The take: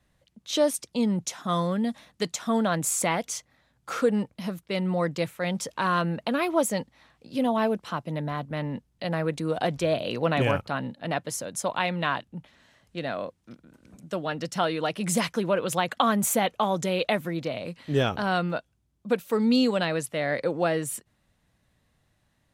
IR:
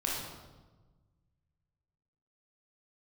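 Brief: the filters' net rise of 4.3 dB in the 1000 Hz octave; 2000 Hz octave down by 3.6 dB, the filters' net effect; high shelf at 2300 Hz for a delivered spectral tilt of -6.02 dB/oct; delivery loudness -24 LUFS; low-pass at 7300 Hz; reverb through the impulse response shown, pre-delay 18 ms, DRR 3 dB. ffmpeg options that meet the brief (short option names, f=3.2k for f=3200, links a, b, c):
-filter_complex "[0:a]lowpass=7.3k,equalizer=f=1k:t=o:g=8,equalizer=f=2k:t=o:g=-4,highshelf=f=2.3k:g=-8.5,asplit=2[a][b];[1:a]atrim=start_sample=2205,adelay=18[c];[b][c]afir=irnorm=-1:irlink=0,volume=-9dB[d];[a][d]amix=inputs=2:normalize=0,volume=0.5dB"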